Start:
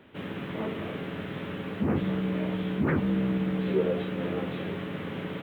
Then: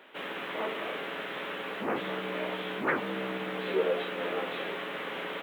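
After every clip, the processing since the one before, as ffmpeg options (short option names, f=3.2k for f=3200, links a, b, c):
-af "highpass=580,volume=5dB"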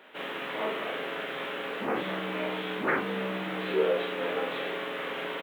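-filter_complex "[0:a]asplit=2[a][b];[b]adelay=42,volume=-3.5dB[c];[a][c]amix=inputs=2:normalize=0"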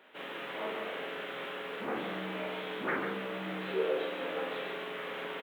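-af "aecho=1:1:143:0.501,volume=-6dB"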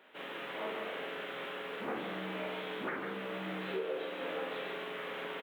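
-af "alimiter=level_in=1.5dB:limit=-24dB:level=0:latency=1:release=391,volume=-1.5dB,volume=-1.5dB"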